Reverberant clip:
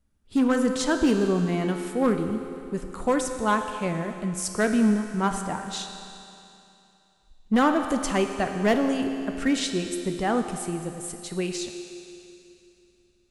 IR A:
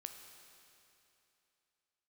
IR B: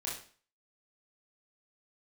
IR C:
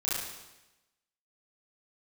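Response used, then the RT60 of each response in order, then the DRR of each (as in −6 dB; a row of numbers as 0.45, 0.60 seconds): A; 2.9, 0.45, 1.0 seconds; 5.0, −5.0, −9.5 decibels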